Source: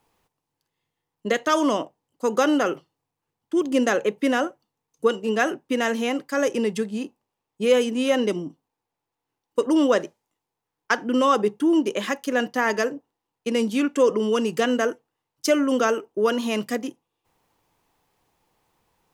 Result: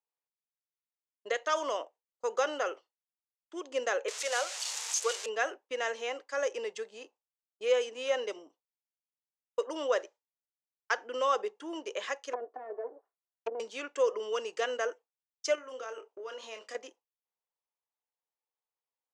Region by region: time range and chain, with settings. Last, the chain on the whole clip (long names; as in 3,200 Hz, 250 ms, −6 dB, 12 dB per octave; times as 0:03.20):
0:04.08–0:05.26: spike at every zero crossing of −14 dBFS + high-pass filter 440 Hz 24 dB per octave + high-shelf EQ 4,900 Hz +6 dB
0:12.33–0:13.60: lower of the sound and its delayed copy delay 2.8 ms + treble cut that deepens with the level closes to 310 Hz, closed at −24 dBFS + flat-topped bell 840 Hz +8.5 dB 2.5 octaves
0:15.55–0:16.75: downward compressor 12 to 1, threshold −27 dBFS + double-tracking delay 27 ms −7 dB
whole clip: Chebyshev band-pass filter 480–7,000 Hz, order 3; noise gate with hold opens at −40 dBFS; level −8 dB